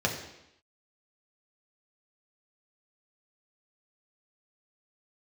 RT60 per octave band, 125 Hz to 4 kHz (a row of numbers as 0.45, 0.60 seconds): 0.75, 0.85, 0.80, 0.85, 0.85, 0.85 seconds